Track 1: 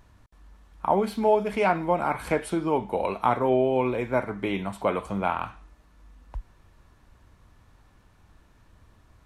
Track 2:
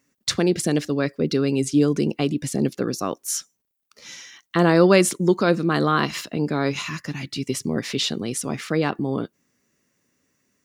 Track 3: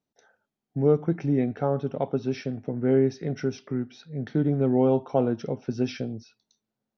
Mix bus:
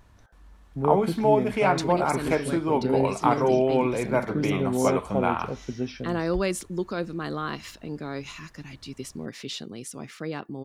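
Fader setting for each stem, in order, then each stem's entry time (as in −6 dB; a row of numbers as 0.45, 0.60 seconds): +0.5, −11.0, −4.0 decibels; 0.00, 1.50, 0.00 seconds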